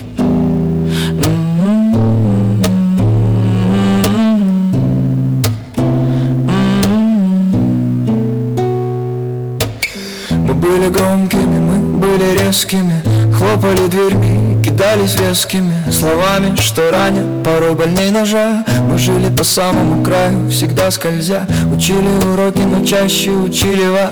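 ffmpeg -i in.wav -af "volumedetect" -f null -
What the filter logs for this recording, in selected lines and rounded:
mean_volume: -12.0 dB
max_volume: -8.8 dB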